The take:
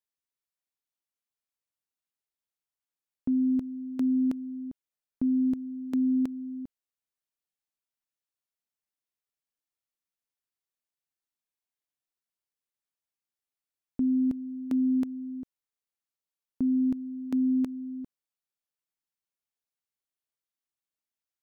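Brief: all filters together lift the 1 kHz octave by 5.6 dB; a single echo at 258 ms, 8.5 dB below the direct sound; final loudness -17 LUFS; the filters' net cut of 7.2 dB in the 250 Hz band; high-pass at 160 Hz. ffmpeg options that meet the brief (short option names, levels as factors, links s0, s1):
-af "highpass=160,equalizer=f=250:t=o:g=-7,equalizer=f=1000:t=o:g=7.5,aecho=1:1:258:0.376,volume=10.6"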